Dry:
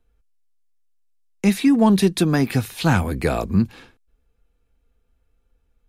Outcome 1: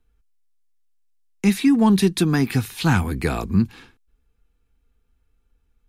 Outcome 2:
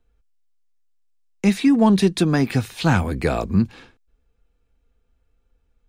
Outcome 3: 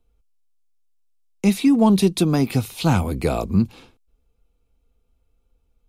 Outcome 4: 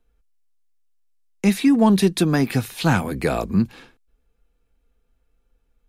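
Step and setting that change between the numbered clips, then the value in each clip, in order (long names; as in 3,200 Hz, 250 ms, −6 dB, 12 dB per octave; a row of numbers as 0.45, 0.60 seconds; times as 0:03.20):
parametric band, centre frequency: 580, 12,000, 1,700, 82 Hertz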